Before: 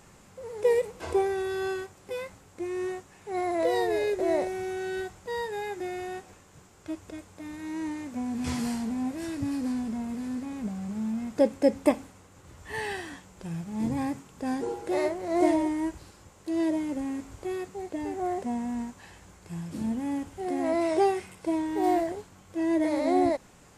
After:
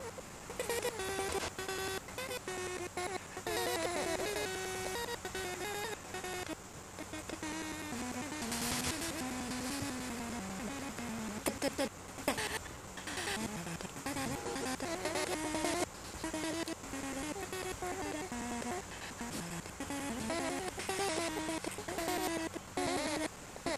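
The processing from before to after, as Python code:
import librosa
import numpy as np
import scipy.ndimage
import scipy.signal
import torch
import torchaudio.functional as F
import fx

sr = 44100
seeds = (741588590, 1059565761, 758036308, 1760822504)

y = fx.block_reorder(x, sr, ms=99.0, group=5)
y = fx.spectral_comp(y, sr, ratio=2.0)
y = y * 10.0 ** (-8.5 / 20.0)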